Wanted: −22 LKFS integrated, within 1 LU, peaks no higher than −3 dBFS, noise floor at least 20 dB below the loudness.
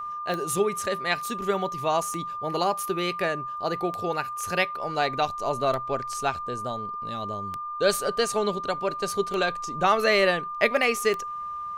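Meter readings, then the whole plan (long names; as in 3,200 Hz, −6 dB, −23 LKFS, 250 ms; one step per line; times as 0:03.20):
number of clicks 7; interfering tone 1,200 Hz; level of the tone −31 dBFS; integrated loudness −26.5 LKFS; sample peak −6.0 dBFS; target loudness −22.0 LKFS
→ click removal
notch filter 1,200 Hz, Q 30
level +4.5 dB
brickwall limiter −3 dBFS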